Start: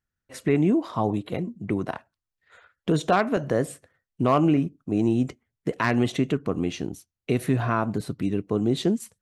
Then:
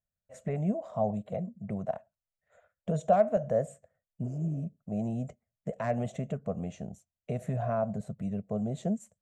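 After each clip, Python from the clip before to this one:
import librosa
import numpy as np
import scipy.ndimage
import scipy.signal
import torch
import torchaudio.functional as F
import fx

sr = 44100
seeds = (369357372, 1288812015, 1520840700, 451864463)

y = fx.spec_repair(x, sr, seeds[0], start_s=4.27, length_s=0.33, low_hz=330.0, high_hz=4600.0, source='both')
y = fx.curve_eq(y, sr, hz=(120.0, 210.0, 310.0, 630.0, 930.0, 2000.0, 4900.0, 7300.0, 10000.0), db=(0, 3, -19, 12, -8, -9, -17, 1, -15))
y = y * 10.0 ** (-7.0 / 20.0)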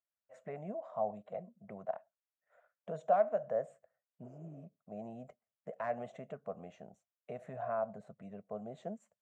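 y = fx.bandpass_q(x, sr, hz=1100.0, q=0.9)
y = y * 10.0 ** (-2.0 / 20.0)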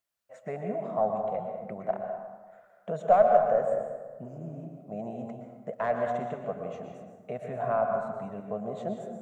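y = fx.tracing_dist(x, sr, depth_ms=0.025)
y = fx.rev_plate(y, sr, seeds[1], rt60_s=1.4, hf_ratio=0.55, predelay_ms=105, drr_db=3.0)
y = y * 10.0 ** (8.0 / 20.0)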